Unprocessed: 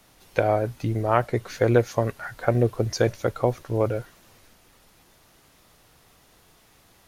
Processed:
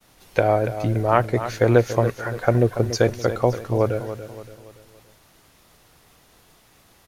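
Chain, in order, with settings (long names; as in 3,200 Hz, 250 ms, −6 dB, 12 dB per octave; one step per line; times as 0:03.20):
downward expander −55 dBFS
on a send: repeating echo 285 ms, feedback 43%, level −11.5 dB
on the sum: level +3 dB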